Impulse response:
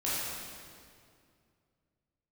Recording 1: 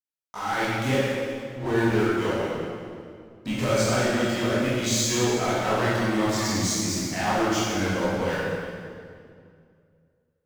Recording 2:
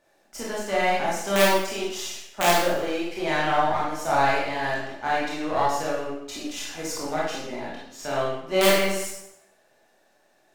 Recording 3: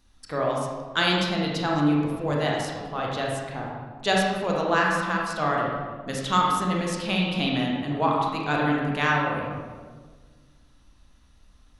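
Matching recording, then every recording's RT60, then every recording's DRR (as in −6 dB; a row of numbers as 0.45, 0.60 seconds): 1; 2.3, 0.75, 1.6 seconds; −10.0, −6.5, −2.5 decibels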